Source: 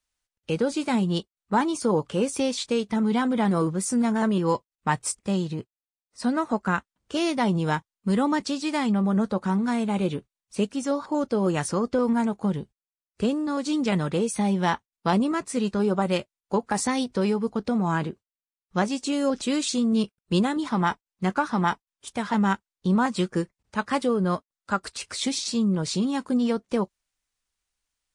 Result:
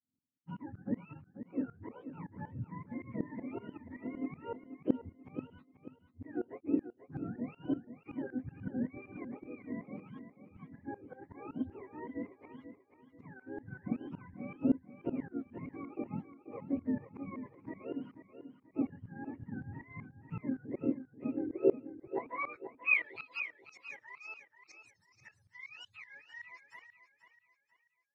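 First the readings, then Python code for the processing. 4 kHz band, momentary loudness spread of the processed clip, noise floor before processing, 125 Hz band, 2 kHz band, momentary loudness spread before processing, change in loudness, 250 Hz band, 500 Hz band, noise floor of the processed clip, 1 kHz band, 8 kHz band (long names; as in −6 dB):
below −25 dB, 17 LU, below −85 dBFS, −17.5 dB, −8.5 dB, 6 LU, −14.0 dB, −14.5 dB, −15.0 dB, −74 dBFS, −22.0 dB, below −35 dB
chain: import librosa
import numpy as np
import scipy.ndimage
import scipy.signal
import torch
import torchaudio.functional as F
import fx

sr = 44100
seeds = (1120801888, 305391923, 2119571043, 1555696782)

y = fx.octave_mirror(x, sr, pivot_hz=680.0)
y = fx.filter_sweep_bandpass(y, sr, from_hz=260.0, to_hz=5800.0, start_s=21.41, end_s=23.49, q=6.9)
y = fx.tremolo_shape(y, sr, shape='saw_up', hz=5.3, depth_pct=95)
y = fx.echo_feedback(y, sr, ms=486, feedback_pct=35, wet_db=-11)
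y = F.gain(torch.from_numpy(y), 7.5).numpy()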